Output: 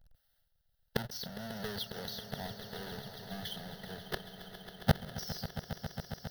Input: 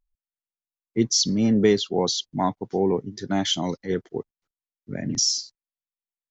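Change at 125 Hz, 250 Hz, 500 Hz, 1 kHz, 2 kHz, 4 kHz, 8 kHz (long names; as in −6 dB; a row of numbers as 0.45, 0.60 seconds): −8.0 dB, −18.0 dB, −18.0 dB, −13.0 dB, −5.5 dB, −15.0 dB, can't be measured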